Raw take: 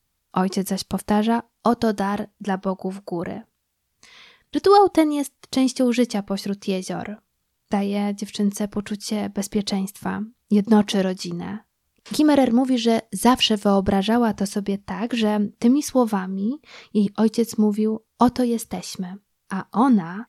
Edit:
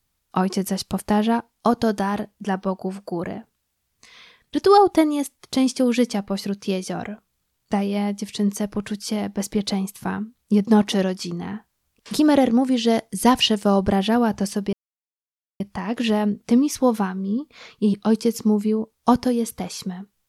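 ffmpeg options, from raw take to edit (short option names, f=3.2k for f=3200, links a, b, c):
-filter_complex "[0:a]asplit=2[a][b];[a]atrim=end=14.73,asetpts=PTS-STARTPTS,afade=t=out:st=14.726:d=0.004:c=hsin,apad=pad_dur=0.87[c];[b]atrim=start=14.73,asetpts=PTS-STARTPTS,afade=t=in:d=0.004:c=hsin[d];[c][d]concat=n=2:v=0:a=1"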